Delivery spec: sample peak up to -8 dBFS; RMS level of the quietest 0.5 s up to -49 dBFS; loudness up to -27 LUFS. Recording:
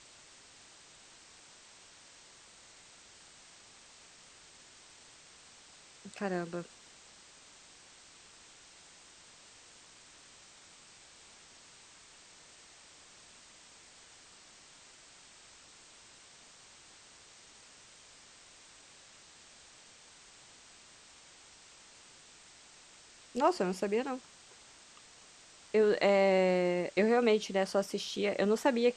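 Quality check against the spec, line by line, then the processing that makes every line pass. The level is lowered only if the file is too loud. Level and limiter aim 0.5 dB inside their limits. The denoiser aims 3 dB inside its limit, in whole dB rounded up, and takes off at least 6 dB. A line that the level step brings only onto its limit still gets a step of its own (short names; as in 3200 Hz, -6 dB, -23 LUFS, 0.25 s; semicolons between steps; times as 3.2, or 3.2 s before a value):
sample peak -14.5 dBFS: OK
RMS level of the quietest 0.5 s -57 dBFS: OK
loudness -30.5 LUFS: OK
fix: none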